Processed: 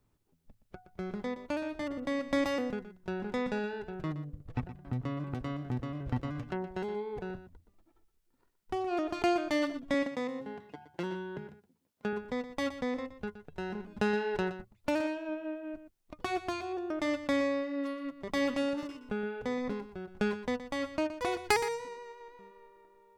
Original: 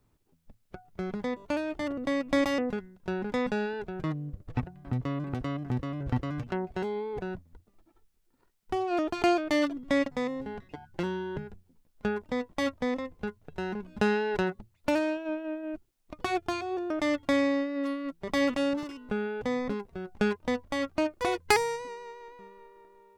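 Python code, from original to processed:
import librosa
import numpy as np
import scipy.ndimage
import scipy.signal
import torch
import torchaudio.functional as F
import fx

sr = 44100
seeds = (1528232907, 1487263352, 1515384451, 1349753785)

y = fx.highpass(x, sr, hz=150.0, slope=12, at=(9.94, 12.13))
y = y + 10.0 ** (-12.5 / 20.0) * np.pad(y, (int(120 * sr / 1000.0), 0))[:len(y)]
y = y * 10.0 ** (-4.0 / 20.0)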